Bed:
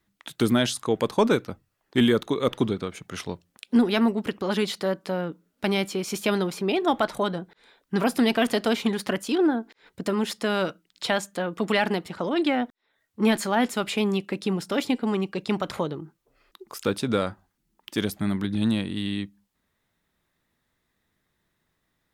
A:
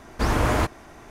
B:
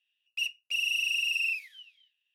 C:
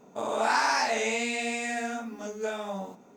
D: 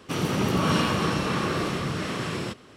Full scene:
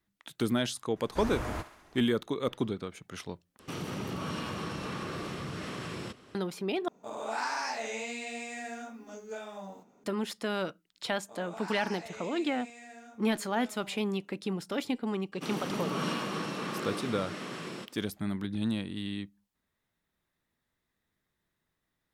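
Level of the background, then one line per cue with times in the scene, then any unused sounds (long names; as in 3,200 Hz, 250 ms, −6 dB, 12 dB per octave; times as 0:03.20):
bed −7.5 dB
0:00.96: mix in A −14.5 dB + feedback echo with a high-pass in the loop 67 ms, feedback 67%, high-pass 630 Hz, level −12.5 dB
0:03.59: overwrite with D −5.5 dB + downward compressor 2.5 to 1, threshold −30 dBFS
0:06.88: overwrite with C −8.5 dB
0:11.13: mix in C −18 dB
0:15.32: mix in D −9 dB + high-pass filter 160 Hz 24 dB per octave
not used: B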